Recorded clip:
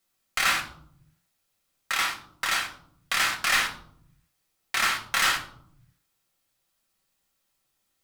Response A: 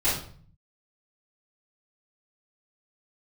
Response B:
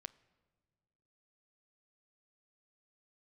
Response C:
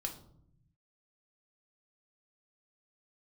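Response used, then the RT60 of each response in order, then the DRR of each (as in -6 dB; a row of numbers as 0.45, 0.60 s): C; 0.50, 1.7, 0.70 s; -11.5, 15.5, 2.5 dB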